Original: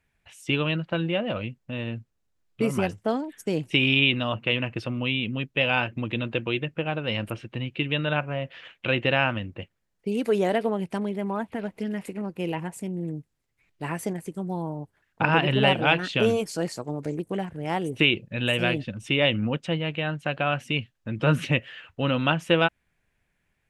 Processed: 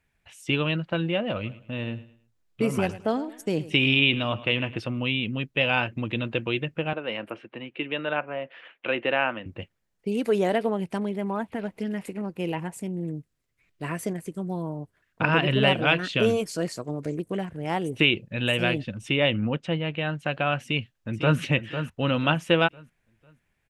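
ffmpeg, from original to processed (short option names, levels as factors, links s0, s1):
-filter_complex "[0:a]asplit=3[s0][s1][s2];[s0]afade=t=out:st=1.43:d=0.02[s3];[s1]aecho=1:1:107|214|321:0.15|0.0479|0.0153,afade=t=in:st=1.43:d=0.02,afade=t=out:st=4.8:d=0.02[s4];[s2]afade=t=in:st=4.8:d=0.02[s5];[s3][s4][s5]amix=inputs=3:normalize=0,asettb=1/sr,asplit=3[s6][s7][s8];[s6]atrim=end=6.934[s9];[s7]atrim=start=6.93:end=9.46,asetpts=PTS-STARTPTS,afade=t=in:d=0.004:c=qsin,afade=t=out:st=2.526:d=0.004:c=qsin,acrossover=split=240 2900:gain=0.0794 1 0.178[s10][s11][s12];[s10][s11][s12]amix=inputs=3:normalize=0[s13];[s8]atrim=start=9.456[s14];[s9][s13]acrossfade=d=0.004:c1=hsin:c2=qsin[s15];[s15][s14]acrossfade=d=0.004:c1=qsin:c2=hsin,asettb=1/sr,asplit=3[s16][s17][s18];[s16]atrim=end=13.084[s19];[s17]atrim=start=13.08:end=17.52,asetpts=PTS-STARTPTS,afade=t=in:d=0.004:c=qsin,afade=t=out:st=4.436:d=0.004:c=qsin,bandreject=f=840:w=6[s20];[s18]atrim=start=17.516[s21];[s19][s20]acrossfade=d=0.004:c1=hsin:c2=qsin[s22];[s22][s21]acrossfade=d=0.004:c1=qsin:c2=hsin,asettb=1/sr,asplit=3[s23][s24][s25];[s23]atrim=end=19.124[s26];[s24]atrim=start=19.12:end=20.01,asetpts=PTS-STARTPTS,afade=t=in:d=0.004:c=qsin,afade=t=out:st=0.886:d=0.004:c=qsin,lowpass=f=4000:p=1[s27];[s25]atrim=start=20.006[s28];[s26][s27]acrossfade=d=0.004:c1=hsin:c2=qsin[s29];[s29][s28]acrossfade=d=0.004:c1=qsin:c2=hsin,asplit=2[s30][s31];[s31]afade=t=in:st=20.63:d=0.01,afade=t=out:st=21.39:d=0.01,aecho=0:1:500|1000|1500|2000:0.354813|0.124185|0.0434646|0.0152126[s32];[s30][s32]amix=inputs=2:normalize=0"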